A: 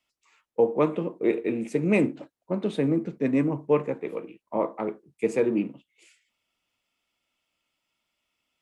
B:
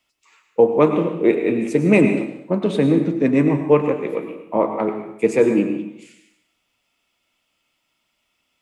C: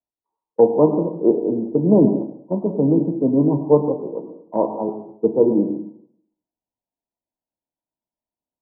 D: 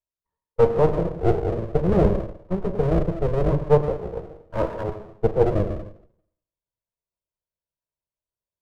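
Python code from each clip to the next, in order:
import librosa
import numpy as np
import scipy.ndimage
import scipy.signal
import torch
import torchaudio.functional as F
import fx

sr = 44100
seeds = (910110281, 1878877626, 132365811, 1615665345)

y1 = fx.rev_plate(x, sr, seeds[0], rt60_s=0.76, hf_ratio=0.95, predelay_ms=85, drr_db=6.5)
y1 = F.gain(torch.from_numpy(y1), 7.5).numpy()
y2 = scipy.signal.sosfilt(scipy.signal.cheby1(6, 1.0, 980.0, 'lowpass', fs=sr, output='sos'), y1)
y2 = fx.band_widen(y2, sr, depth_pct=40)
y3 = fx.lower_of_two(y2, sr, delay_ms=1.9)
y3 = fx.low_shelf(y3, sr, hz=240.0, db=9.0)
y3 = F.gain(torch.from_numpy(y3), -4.5).numpy()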